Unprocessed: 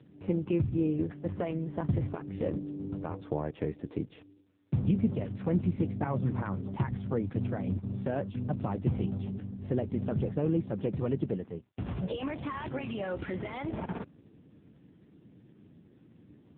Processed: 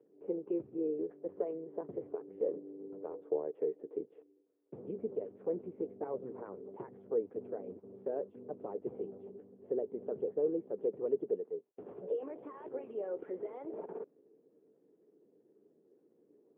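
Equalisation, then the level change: ladder band-pass 470 Hz, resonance 70%; +4.0 dB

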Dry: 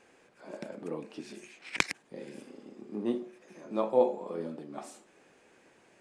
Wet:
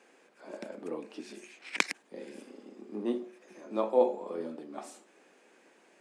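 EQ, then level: high-pass 210 Hz 24 dB/octave; 0.0 dB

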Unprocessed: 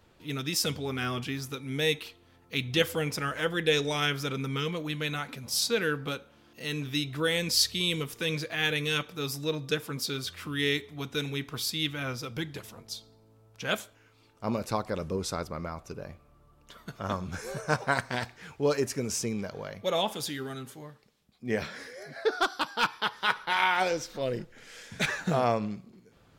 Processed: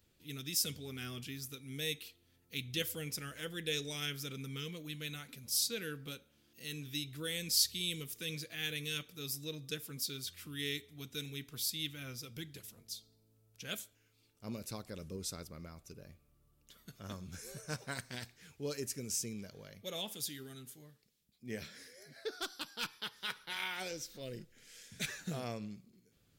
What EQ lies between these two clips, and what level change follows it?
RIAA curve recording; amplifier tone stack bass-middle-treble 10-0-1; treble shelf 3 kHz -8.5 dB; +13.5 dB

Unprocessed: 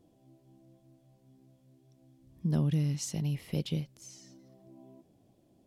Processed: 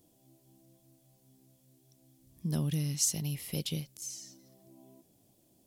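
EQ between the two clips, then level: treble shelf 2.8 kHz +9 dB; treble shelf 7.2 kHz +12 dB; -3.5 dB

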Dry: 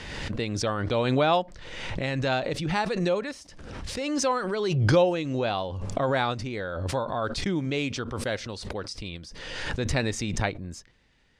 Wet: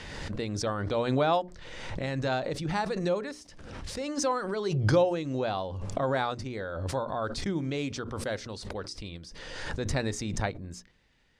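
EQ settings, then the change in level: hum notches 60/120/180/240/300/360/420 Hz; dynamic bell 2.7 kHz, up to -6 dB, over -46 dBFS, Q 1.5; -2.5 dB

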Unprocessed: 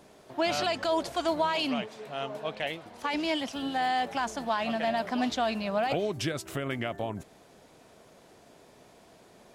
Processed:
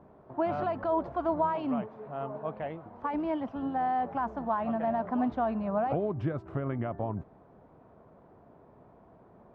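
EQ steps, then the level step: resonant low-pass 1.1 kHz, resonance Q 1.8; peaking EQ 84 Hz +7 dB 3 oct; bass shelf 480 Hz +4 dB; -6.0 dB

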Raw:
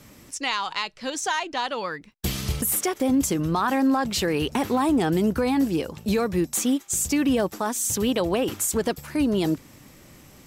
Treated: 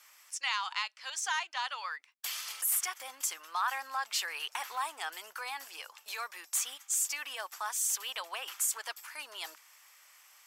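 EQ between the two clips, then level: high-pass 970 Hz 24 dB/octave; band-stop 3.9 kHz, Q 16; -5.0 dB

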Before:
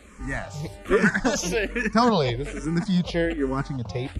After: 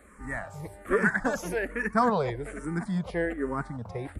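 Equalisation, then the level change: bass shelf 440 Hz -6.5 dB; high-order bell 4.1 kHz -14.5 dB; -1.5 dB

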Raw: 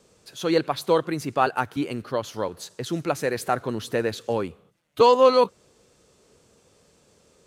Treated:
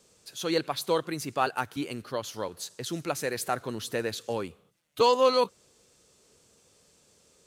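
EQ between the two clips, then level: treble shelf 2.8 kHz +9 dB; -6.5 dB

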